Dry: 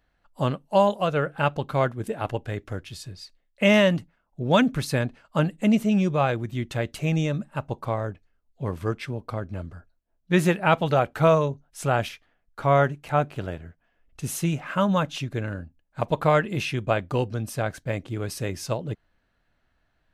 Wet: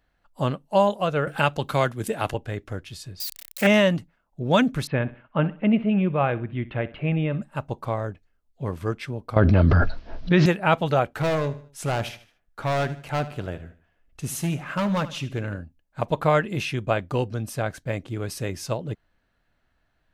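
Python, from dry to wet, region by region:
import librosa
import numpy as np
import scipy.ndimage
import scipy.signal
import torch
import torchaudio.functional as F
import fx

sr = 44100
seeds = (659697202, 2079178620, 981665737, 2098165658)

y = fx.chain(x, sr, fx.high_shelf(hz=2500.0, db=10.5),
    fx.band_squash(depth_pct=40), at=(1.27, 2.34))
y = fx.chain(y, sr, fx.crossing_spikes(level_db=-24.0),
    fx.doppler_dist(depth_ms=0.26), at=(3.2, 3.67))
y = fx.chain(y, sr, fx.steep_lowpass(hz=3000.0, slope=36),
    fx.echo_feedback(ms=64, feedback_pct=38, wet_db=-18), at=(4.87, 7.42))
y = fx.chain(y, sr, fx.steep_lowpass(hz=5300.0, slope=48),
    fx.env_flatten(amount_pct=100), at=(9.36, 10.46))
y = fx.chain(y, sr, fx.clip_hard(threshold_db=-20.5),
    fx.echo_feedback(ms=76, feedback_pct=38, wet_db=-15.5), at=(11.19, 15.58))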